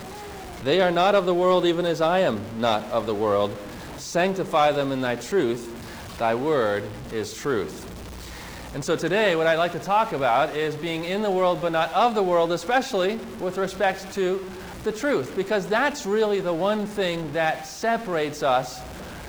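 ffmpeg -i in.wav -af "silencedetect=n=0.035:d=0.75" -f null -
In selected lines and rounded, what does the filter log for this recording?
silence_start: 7.66
silence_end: 8.75 | silence_duration: 1.09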